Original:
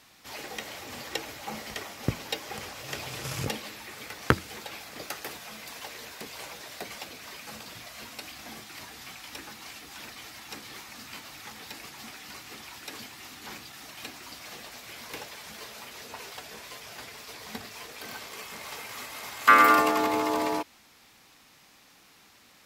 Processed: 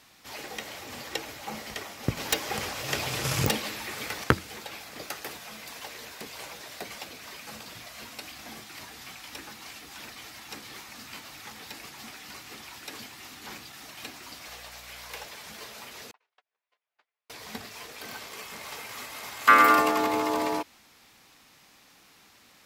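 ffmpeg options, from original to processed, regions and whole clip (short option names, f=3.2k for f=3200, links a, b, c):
-filter_complex "[0:a]asettb=1/sr,asplit=3[a][b][c];[a]atrim=end=2.174[d];[b]atrim=start=2.17:end=4.24,asetpts=PTS-STARTPTS,afade=t=in:d=0.004:c=qsin,afade=t=out:st=2.066:d=0.004:c=qsin,acontrast=62,aeval=exprs='(mod(4.22*val(0)+1,2)-1)/4.22':c=same[e];[c]atrim=start=4.236[f];[d][e]acrossfade=d=0.004:c1=hsin:c2=qsin[g];[g][f]acrossfade=d=0.004:c1=qsin:c2=hsin,asettb=1/sr,asplit=3[h][i][j];[h]atrim=end=14.484[k];[i]atrim=start=14.48:end=15.25,asetpts=PTS-STARTPTS,afade=t=in:d=0.004:c=qsin,afade=t=out:st=0.766:d=0.004:c=qsin,highpass=f=470:w=0.5412,highpass=f=470:w=1.3066,aeval=exprs='val(0)+0.00178*(sin(2*PI*60*n/s)+sin(2*PI*2*60*n/s)/2+sin(2*PI*3*60*n/s)/3+sin(2*PI*4*60*n/s)/4+sin(2*PI*5*60*n/s)/5)':c=same[l];[j]atrim=start=15.246[m];[k][l]acrossfade=d=0.004:c1=hsin:c2=qsin[n];[n][m]acrossfade=d=0.004:c1=qsin:c2=hsin,asettb=1/sr,asplit=3[o][p][q];[o]atrim=end=16.114[r];[p]atrim=start=16.11:end=17.3,asetpts=PTS-STARTPTS,afade=t=in:d=0.004:c=qsin,afade=t=out:st=1.186:d=0.004:c=qsin,agate=range=-45dB:threshold=-39dB:ratio=16:release=100:detection=peak,acompressor=threshold=-57dB:ratio=6:attack=3.2:release=140:knee=1:detection=peak,highpass=600,lowpass=2.9k[s];[q]atrim=start=17.296[t];[r][s]acrossfade=d=0.004:c1=hsin:c2=qsin[u];[u][t]acrossfade=d=0.004:c1=qsin:c2=hsin"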